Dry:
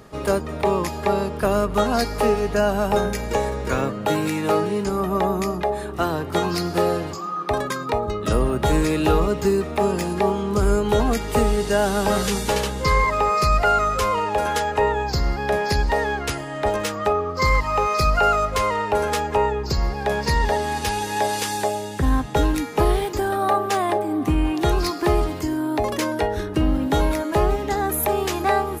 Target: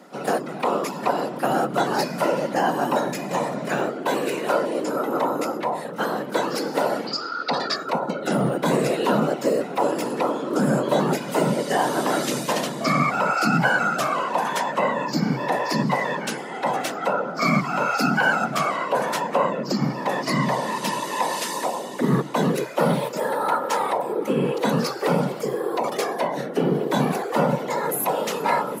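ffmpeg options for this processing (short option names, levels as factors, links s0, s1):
-filter_complex "[0:a]asettb=1/sr,asplit=3[s0][s1][s2];[s0]atrim=end=7.074[s3];[s1]atrim=start=7.07:end=7.76,asetpts=PTS-STARTPTS,afade=t=in:d=0.004:c=qsin,afade=t=out:st=0.686:d=0.004:c=qsin,lowpass=f=4600:t=q:w=13[s4];[s2]atrim=start=7.756[s5];[s3][s4]acrossfade=d=0.004:c1=hsin:c2=qsin[s6];[s6][s5]acrossfade=d=0.004:c1=qsin:c2=hsin,afftfilt=real='hypot(re,im)*cos(2*PI*random(0))':imag='hypot(re,im)*sin(2*PI*random(1))':win_size=512:overlap=0.75,afreqshift=130,volume=1.58"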